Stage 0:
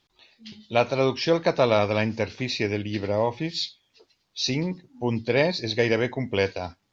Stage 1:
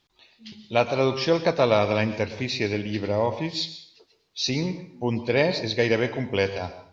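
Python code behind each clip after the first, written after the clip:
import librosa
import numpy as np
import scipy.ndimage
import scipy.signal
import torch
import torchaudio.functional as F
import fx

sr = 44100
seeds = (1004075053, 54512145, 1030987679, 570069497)

y = fx.rev_plate(x, sr, seeds[0], rt60_s=0.57, hf_ratio=0.9, predelay_ms=100, drr_db=11.5)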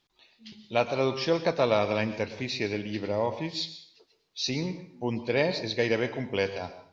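y = fx.peak_eq(x, sr, hz=76.0, db=-7.5, octaves=0.81)
y = F.gain(torch.from_numpy(y), -4.0).numpy()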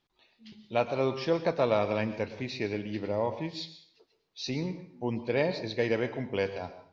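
y = fx.high_shelf(x, sr, hz=3100.0, db=-8.5)
y = F.gain(torch.from_numpy(y), -1.5).numpy()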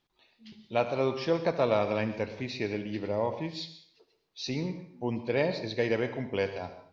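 y = x + 10.0 ** (-15.5 / 20.0) * np.pad(x, (int(73 * sr / 1000.0), 0))[:len(x)]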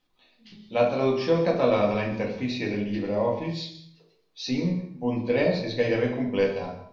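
y = fx.room_shoebox(x, sr, seeds[1], volume_m3=240.0, walls='furnished', distance_m=2.0)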